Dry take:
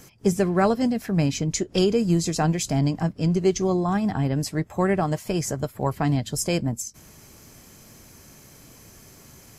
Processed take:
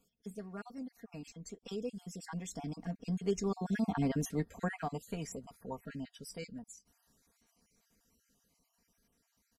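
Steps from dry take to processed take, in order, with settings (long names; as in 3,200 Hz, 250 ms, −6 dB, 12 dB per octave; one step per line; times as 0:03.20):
time-frequency cells dropped at random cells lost 37%
source passing by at 0:04.11, 18 m/s, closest 8.4 metres
comb filter 4.3 ms, depth 75%
level −7 dB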